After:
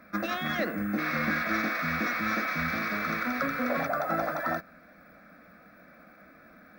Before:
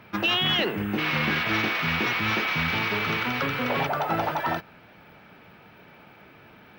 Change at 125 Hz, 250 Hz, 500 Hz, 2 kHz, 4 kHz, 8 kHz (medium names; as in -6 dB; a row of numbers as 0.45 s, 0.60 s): -7.5 dB, -1.5 dB, -3.0 dB, -4.0 dB, -15.5 dB, -2.5 dB